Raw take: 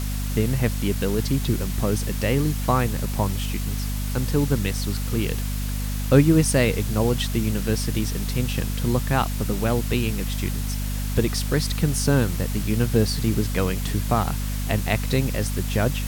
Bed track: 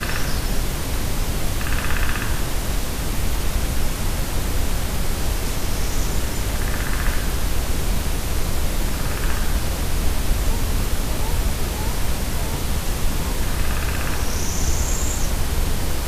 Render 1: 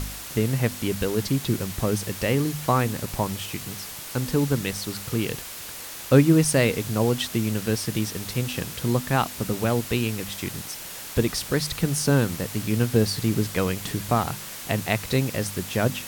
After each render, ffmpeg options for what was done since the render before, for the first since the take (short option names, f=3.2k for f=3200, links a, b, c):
-af "bandreject=f=50:t=h:w=4,bandreject=f=100:t=h:w=4,bandreject=f=150:t=h:w=4,bandreject=f=200:t=h:w=4,bandreject=f=250:t=h:w=4"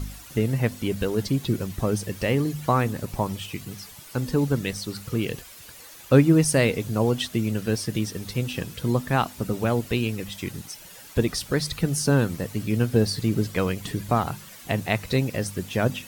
-af "afftdn=nr=11:nf=-38"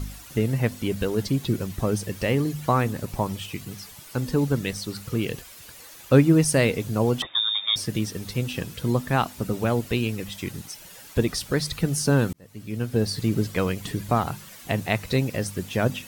-filter_complex "[0:a]asettb=1/sr,asplit=3[a][b][c];[a]atrim=end=7.224[d];[b]atrim=start=7.22:end=7.76,asetpts=PTS-STARTPTS,afade=t=in:d=0.004:c=qsin,afade=t=out:st=0.536:d=0.004:c=qsin,lowpass=f=3.2k:t=q:w=0.5098,lowpass=f=3.2k:t=q:w=0.6013,lowpass=f=3.2k:t=q:w=0.9,lowpass=f=3.2k:t=q:w=2.563,afreqshift=-3800[e];[c]atrim=start=7.756[f];[d][e]acrossfade=d=0.004:c1=hsin:c2=qsin[g];[g][f]acrossfade=d=0.004:c1=qsin:c2=hsin,asplit=2[h][i];[h]atrim=end=12.33,asetpts=PTS-STARTPTS,afade=t=out:st=12.326:d=0.004:c=hsin[j];[i]atrim=start=12.33,asetpts=PTS-STARTPTS,afade=t=in:d=0.91[k];[j][k]concat=n=2:v=0:a=1"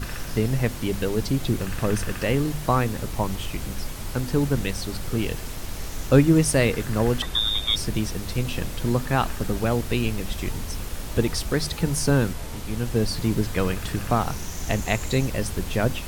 -filter_complex "[1:a]volume=-10.5dB[a];[0:a][a]amix=inputs=2:normalize=0"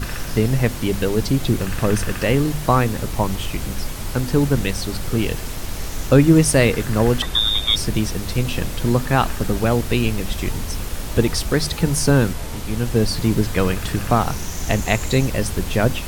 -af "volume=5dB,alimiter=limit=-2dB:level=0:latency=1"